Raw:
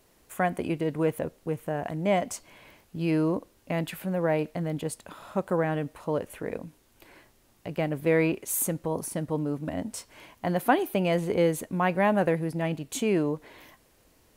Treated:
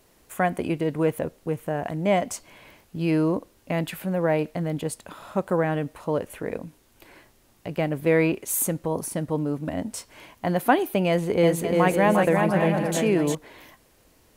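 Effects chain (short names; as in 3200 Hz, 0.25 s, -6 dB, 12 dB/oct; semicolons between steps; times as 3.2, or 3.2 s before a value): 11.08–13.35 bouncing-ball echo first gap 0.35 s, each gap 0.6×, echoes 5; gain +3 dB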